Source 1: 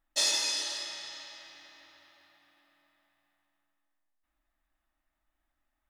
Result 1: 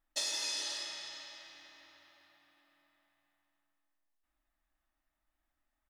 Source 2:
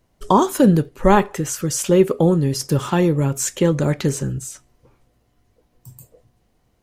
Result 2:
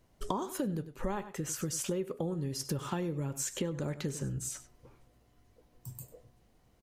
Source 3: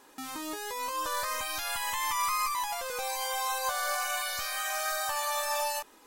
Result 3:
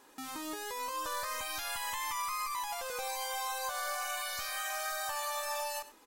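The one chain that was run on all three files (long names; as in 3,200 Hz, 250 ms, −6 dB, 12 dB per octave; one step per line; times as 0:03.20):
on a send: single-tap delay 97 ms −17 dB
on the sum: downward compressor 8 to 1, threshold −29 dBFS
level −3 dB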